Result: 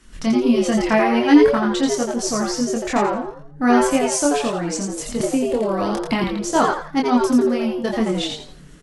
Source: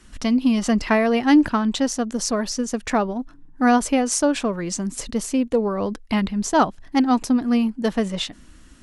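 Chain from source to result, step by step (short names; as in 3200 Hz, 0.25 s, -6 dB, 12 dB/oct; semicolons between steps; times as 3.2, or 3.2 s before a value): chorus voices 4, 0.43 Hz, delay 25 ms, depth 4.1 ms; frequency-shifting echo 85 ms, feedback 31%, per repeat +140 Hz, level -4 dB; 5.2–6.24 three-band squash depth 100%; gain +3 dB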